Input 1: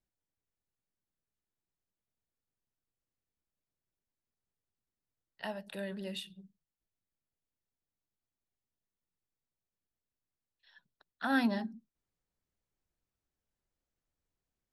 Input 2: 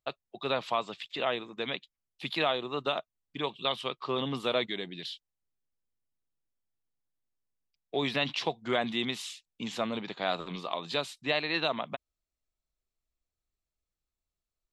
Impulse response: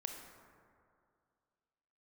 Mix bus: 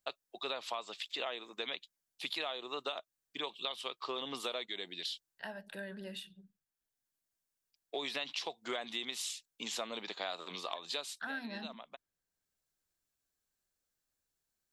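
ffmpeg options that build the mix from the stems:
-filter_complex "[0:a]equalizer=frequency=1600:width_type=o:width=0.22:gain=10.5,acompressor=threshold=-35dB:ratio=4,volume=-3dB,asplit=2[link_01][link_02];[1:a]highpass=140,bass=frequency=250:gain=-12,treble=frequency=4000:gain=10,volume=-2dB[link_03];[link_02]apad=whole_len=649585[link_04];[link_03][link_04]sidechaincompress=threshold=-55dB:ratio=8:attack=6.6:release=771[link_05];[link_01][link_05]amix=inputs=2:normalize=0,lowshelf=frequency=160:gain=-4.5,acompressor=threshold=-35dB:ratio=6"

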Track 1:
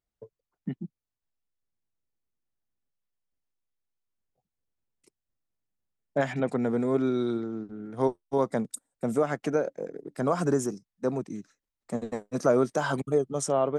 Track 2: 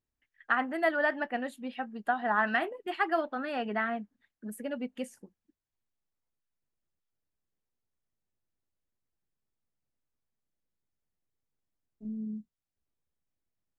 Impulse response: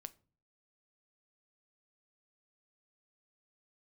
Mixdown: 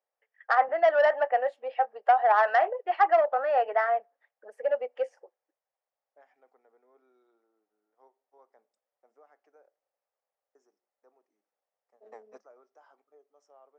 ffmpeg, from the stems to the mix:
-filter_complex "[0:a]lowpass=frequency=2500:poles=1,volume=-14.5dB,asplit=3[link_01][link_02][link_03];[link_01]atrim=end=9.78,asetpts=PTS-STARTPTS,afade=type=out:start_time=9.776:duration=0.004:curve=hsin[link_04];[link_02]atrim=start=9.78:end=10.55,asetpts=PTS-STARTPTS,volume=0[link_05];[link_03]atrim=start=10.55,asetpts=PTS-STARTPTS,afade=type=in:duration=0.004:curve=hsin[link_06];[link_04][link_05][link_06]concat=n=3:v=0:a=1,asplit=2[link_07][link_08];[link_08]volume=-16dB[link_09];[1:a]highpass=frequency=540:width_type=q:width=4.3,equalizer=frequency=7000:width_type=o:width=1.7:gain=-13.5,volume=-0.5dB,asplit=3[link_10][link_11][link_12];[link_11]volume=-14dB[link_13];[link_12]apad=whole_len=607988[link_14];[link_07][link_14]sidechaingate=range=-33dB:threshold=-51dB:ratio=16:detection=peak[link_15];[2:a]atrim=start_sample=2205[link_16];[link_09][link_13]amix=inputs=2:normalize=0[link_17];[link_17][link_16]afir=irnorm=-1:irlink=0[link_18];[link_15][link_10][link_18]amix=inputs=3:normalize=0,asoftclip=type=tanh:threshold=-17dB,highpass=frequency=420:width=0.5412,highpass=frequency=420:width=1.3066,equalizer=frequency=790:width_type=q:width=4:gain=8,equalizer=frequency=1200:width_type=q:width=4:gain=4,equalizer=frequency=1900:width_type=q:width=4:gain=4,equalizer=frequency=3800:width_type=q:width=4:gain=-6,equalizer=frequency=5400:width_type=q:width=4:gain=8,lowpass=frequency=6700:width=0.5412,lowpass=frequency=6700:width=1.3066"

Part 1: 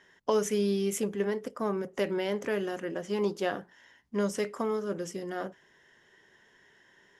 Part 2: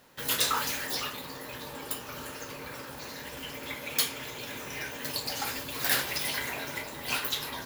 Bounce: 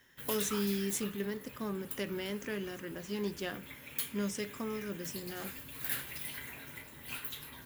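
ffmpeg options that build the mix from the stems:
ffmpeg -i stem1.wav -i stem2.wav -filter_complex "[0:a]volume=-0.5dB[link_01];[1:a]equalizer=frequency=5300:width_type=o:width=1.1:gain=-13.5,volume=-5.5dB[link_02];[link_01][link_02]amix=inputs=2:normalize=0,equalizer=frequency=680:width=0.6:gain=-12.5" out.wav

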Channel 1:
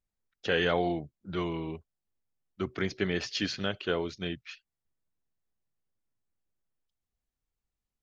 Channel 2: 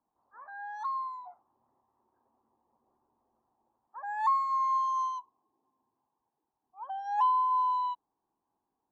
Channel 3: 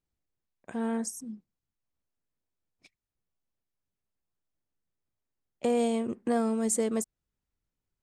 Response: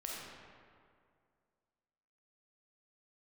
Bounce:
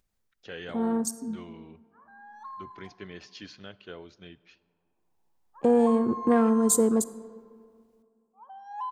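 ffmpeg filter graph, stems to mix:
-filter_complex "[0:a]acompressor=mode=upward:threshold=-46dB:ratio=2.5,volume=-13.5dB,asplit=2[link_01][link_02];[link_02]volume=-19.5dB[link_03];[1:a]adelay=1600,volume=-10.5dB,asplit=2[link_04][link_05];[link_05]volume=-7.5dB[link_06];[2:a]afwtdn=0.00794,equalizer=frequency=620:width_type=o:width=0.25:gain=-9,dynaudnorm=framelen=130:gausssize=13:maxgain=5.5dB,volume=0dB,asplit=2[link_07][link_08];[link_08]volume=-13.5dB[link_09];[3:a]atrim=start_sample=2205[link_10];[link_03][link_06][link_09]amix=inputs=3:normalize=0[link_11];[link_11][link_10]afir=irnorm=-1:irlink=0[link_12];[link_01][link_04][link_07][link_12]amix=inputs=4:normalize=0"

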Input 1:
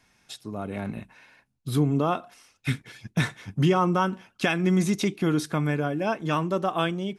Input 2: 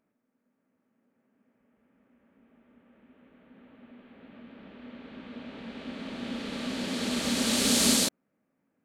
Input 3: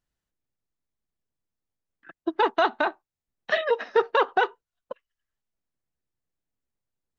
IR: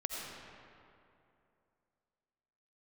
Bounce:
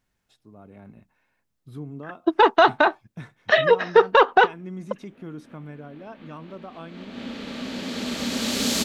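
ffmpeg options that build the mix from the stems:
-filter_complex "[0:a]highshelf=frequency=2400:gain=-11.5,volume=-13.5dB,asplit=2[link_01][link_02];[1:a]agate=range=-24dB:threshold=-56dB:ratio=16:detection=peak,equalizer=frequency=9300:width=2.9:gain=-10.5,adelay=950,volume=1dB[link_03];[2:a]acontrast=36,volume=1.5dB[link_04];[link_02]apad=whole_len=432023[link_05];[link_03][link_05]sidechaincompress=threshold=-42dB:ratio=8:attack=8:release=249[link_06];[link_01][link_06][link_04]amix=inputs=3:normalize=0"

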